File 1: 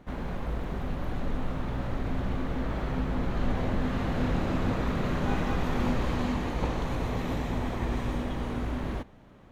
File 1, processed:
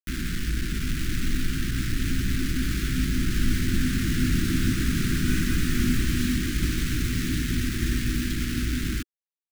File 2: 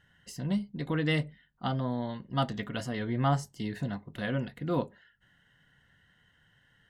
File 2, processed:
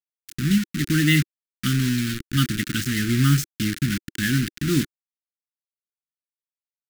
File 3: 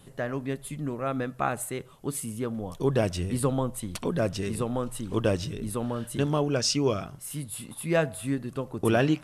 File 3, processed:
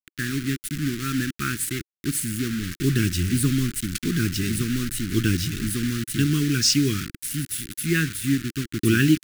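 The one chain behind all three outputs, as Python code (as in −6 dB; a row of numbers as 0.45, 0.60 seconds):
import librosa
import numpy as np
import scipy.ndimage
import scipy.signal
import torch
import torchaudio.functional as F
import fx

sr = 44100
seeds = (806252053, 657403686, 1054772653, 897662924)

y = fx.quant_dither(x, sr, seeds[0], bits=6, dither='none')
y = scipy.signal.sosfilt(scipy.signal.ellip(3, 1.0, 60, [330.0, 1500.0], 'bandstop', fs=sr, output='sos'), y)
y = y * 10.0 ** (-24 / 20.0) / np.sqrt(np.mean(np.square(y)))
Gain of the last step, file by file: +5.5, +11.0, +7.0 decibels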